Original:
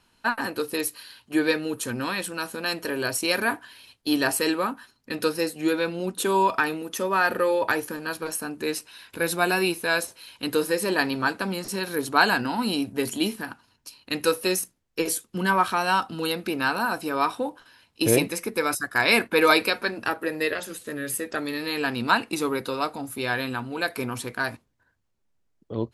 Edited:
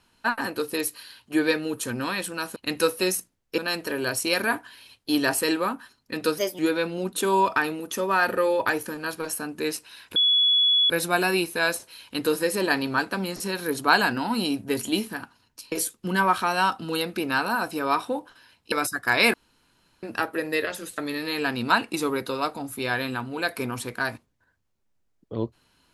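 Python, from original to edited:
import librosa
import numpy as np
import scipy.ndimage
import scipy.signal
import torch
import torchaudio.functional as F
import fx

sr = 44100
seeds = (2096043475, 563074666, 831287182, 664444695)

y = fx.edit(x, sr, fx.speed_span(start_s=5.36, length_s=0.25, speed=1.2),
    fx.insert_tone(at_s=9.18, length_s=0.74, hz=3390.0, db=-16.5),
    fx.move(start_s=14.0, length_s=1.02, to_s=2.56),
    fx.cut(start_s=18.02, length_s=0.58),
    fx.room_tone_fill(start_s=19.22, length_s=0.69),
    fx.cut(start_s=20.86, length_s=0.51), tone=tone)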